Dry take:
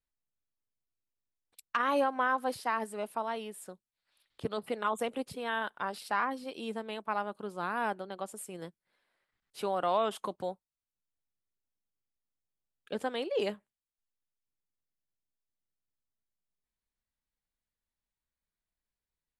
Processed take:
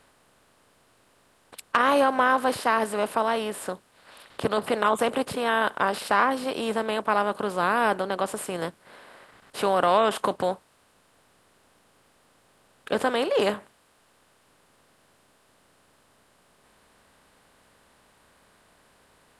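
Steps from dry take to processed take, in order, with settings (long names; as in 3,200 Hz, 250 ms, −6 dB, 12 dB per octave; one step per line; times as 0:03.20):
compressor on every frequency bin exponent 0.6
level +6 dB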